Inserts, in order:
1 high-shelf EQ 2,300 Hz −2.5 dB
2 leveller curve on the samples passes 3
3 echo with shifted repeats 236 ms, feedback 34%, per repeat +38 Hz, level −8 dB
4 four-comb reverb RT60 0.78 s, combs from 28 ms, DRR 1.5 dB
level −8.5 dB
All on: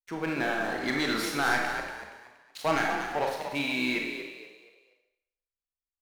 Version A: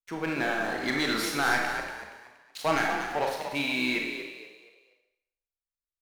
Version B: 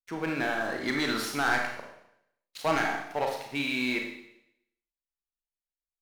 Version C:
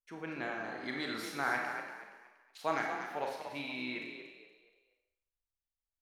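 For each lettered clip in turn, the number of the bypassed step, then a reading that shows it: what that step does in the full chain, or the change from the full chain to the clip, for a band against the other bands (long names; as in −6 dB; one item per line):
1, 8 kHz band +1.5 dB
3, echo-to-direct ratio 0.0 dB to −1.5 dB
2, change in crest factor +5.0 dB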